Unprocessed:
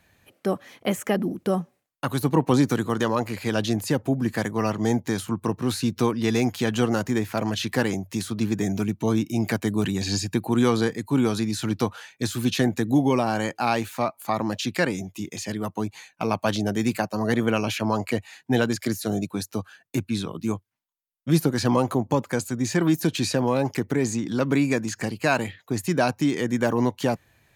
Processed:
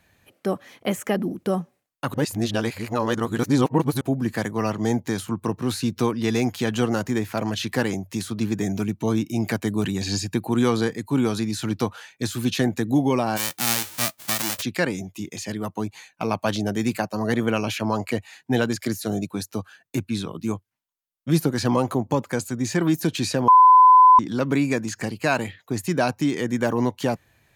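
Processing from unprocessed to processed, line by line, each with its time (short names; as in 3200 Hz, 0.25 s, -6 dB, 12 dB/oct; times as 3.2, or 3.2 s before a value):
2.14–4.01 reverse
13.36–14.61 spectral whitening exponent 0.1
23.48–24.19 bleep 1010 Hz -8 dBFS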